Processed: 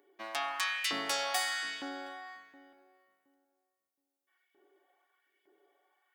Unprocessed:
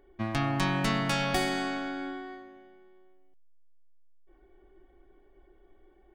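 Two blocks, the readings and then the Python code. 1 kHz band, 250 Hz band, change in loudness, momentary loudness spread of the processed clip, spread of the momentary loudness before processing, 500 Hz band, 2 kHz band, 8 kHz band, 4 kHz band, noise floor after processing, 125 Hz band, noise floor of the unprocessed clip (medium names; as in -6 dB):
-4.5 dB, -16.5 dB, -3.5 dB, 15 LU, 13 LU, -8.5 dB, -1.5 dB, +3.0 dB, +0.5 dB, under -85 dBFS, under -30 dB, -61 dBFS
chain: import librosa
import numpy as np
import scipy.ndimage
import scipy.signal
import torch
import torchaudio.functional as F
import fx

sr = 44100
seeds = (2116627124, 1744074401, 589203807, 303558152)

p1 = scipy.signal.sosfilt(scipy.signal.butter(2, 110.0, 'highpass', fs=sr, output='sos'), x)
p2 = p1 + 0.4 * np.pad(p1, (int(7.0 * sr / 1000.0), 0))[:len(p1)]
p3 = fx.filter_lfo_highpass(p2, sr, shape='saw_up', hz=1.1, low_hz=260.0, high_hz=2600.0, q=1.6)
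p4 = 10.0 ** (-27.0 / 20.0) * np.tanh(p3 / 10.0 ** (-27.0 / 20.0))
p5 = p3 + (p4 * librosa.db_to_amplitude(-12.0))
p6 = fx.tilt_eq(p5, sr, slope=3.0)
p7 = p6 + fx.echo_filtered(p6, sr, ms=719, feedback_pct=20, hz=850.0, wet_db=-16.0, dry=0)
y = p7 * librosa.db_to_amplitude(-8.0)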